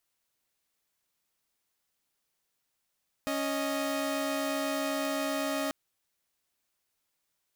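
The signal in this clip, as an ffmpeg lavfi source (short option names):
-f lavfi -i "aevalsrc='0.0335*((2*mod(277.18*t,1)-1)+(2*mod(622.25*t,1)-1))':d=2.44:s=44100"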